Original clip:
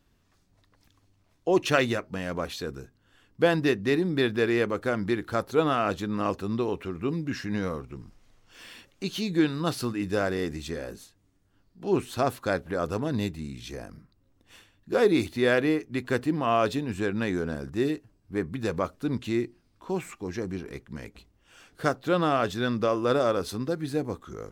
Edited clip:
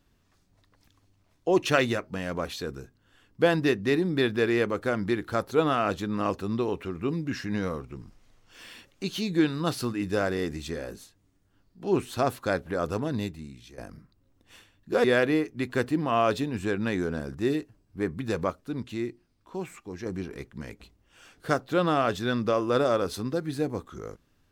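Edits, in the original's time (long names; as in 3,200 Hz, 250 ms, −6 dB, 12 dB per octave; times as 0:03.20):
0:12.98–0:13.78: fade out linear, to −13 dB
0:15.04–0:15.39: remove
0:18.85–0:20.41: clip gain −4.5 dB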